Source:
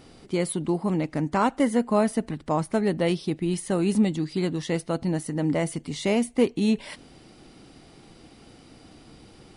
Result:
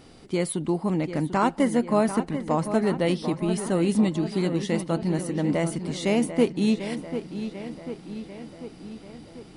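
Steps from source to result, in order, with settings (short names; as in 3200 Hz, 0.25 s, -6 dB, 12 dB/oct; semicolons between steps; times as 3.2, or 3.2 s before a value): darkening echo 0.743 s, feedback 61%, low-pass 4200 Hz, level -10 dB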